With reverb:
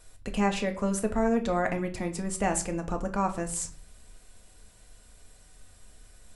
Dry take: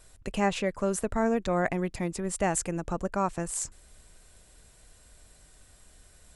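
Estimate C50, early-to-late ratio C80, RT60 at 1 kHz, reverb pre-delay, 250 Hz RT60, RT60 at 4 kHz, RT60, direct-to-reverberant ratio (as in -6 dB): 13.5 dB, 18.0 dB, 0.40 s, 4 ms, 0.65 s, 0.35 s, 0.45 s, 4.5 dB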